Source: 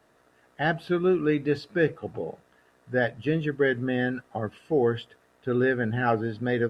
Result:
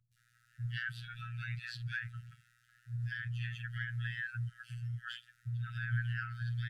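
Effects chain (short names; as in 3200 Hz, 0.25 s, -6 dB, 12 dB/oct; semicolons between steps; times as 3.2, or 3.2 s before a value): three bands offset in time lows, highs, mids 0.12/0.17 s, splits 380/2800 Hz; limiter -23 dBFS, peak gain reduction 10.5 dB; robotiser 119 Hz; brick-wall FIR band-stop 170–1300 Hz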